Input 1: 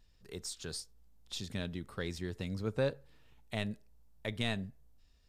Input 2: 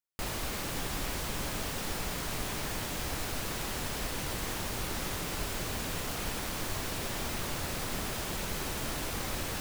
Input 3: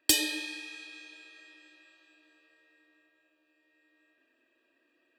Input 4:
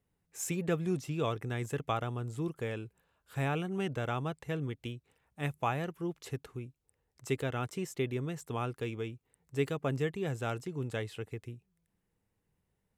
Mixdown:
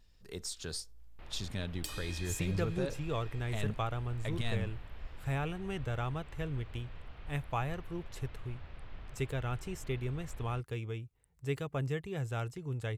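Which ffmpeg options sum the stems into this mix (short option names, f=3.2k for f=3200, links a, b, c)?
-filter_complex "[0:a]alimiter=level_in=4.5dB:limit=-24dB:level=0:latency=1,volume=-4.5dB,volume=1.5dB,asplit=2[a][b];[1:a]lowpass=f=3.2k:w=0.5412,lowpass=f=3.2k:w=1.3066,acompressor=mode=upward:threshold=-46dB:ratio=2.5,adelay=1000,volume=-18dB[c];[2:a]acompressor=threshold=-34dB:ratio=4,adelay=1750,volume=2.5dB[d];[3:a]adelay=1900,volume=-3dB[e];[b]apad=whole_len=306031[f];[d][f]sidechaincompress=threshold=-45dB:ratio=8:attack=49:release=893[g];[a][c][g][e]amix=inputs=4:normalize=0,asubboost=boost=5.5:cutoff=91"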